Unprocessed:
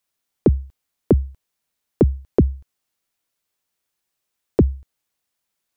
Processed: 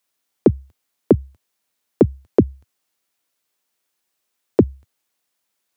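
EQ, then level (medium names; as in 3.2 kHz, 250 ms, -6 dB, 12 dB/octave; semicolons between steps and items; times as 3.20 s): high-pass 99 Hz 24 dB/octave; peaking EQ 150 Hz -11.5 dB 0.36 oct; +3.5 dB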